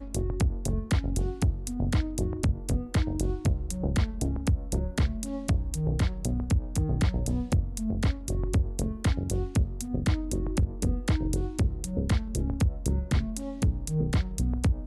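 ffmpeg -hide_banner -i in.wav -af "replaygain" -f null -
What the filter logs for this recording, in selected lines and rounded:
track_gain = +12.4 dB
track_peak = 0.099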